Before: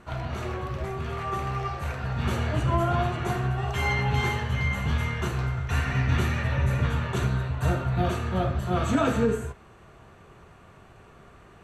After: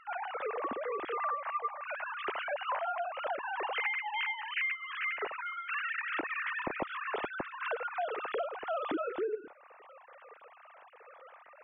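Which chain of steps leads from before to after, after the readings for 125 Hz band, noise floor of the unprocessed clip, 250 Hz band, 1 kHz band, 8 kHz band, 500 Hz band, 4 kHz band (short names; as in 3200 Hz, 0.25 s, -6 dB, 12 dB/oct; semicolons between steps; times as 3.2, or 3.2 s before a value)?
-38.5 dB, -52 dBFS, -16.0 dB, -4.0 dB, under -35 dB, -6.0 dB, -6.5 dB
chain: sine-wave speech; compressor 20:1, threshold -30 dBFS, peak gain reduction 19 dB; gain -1 dB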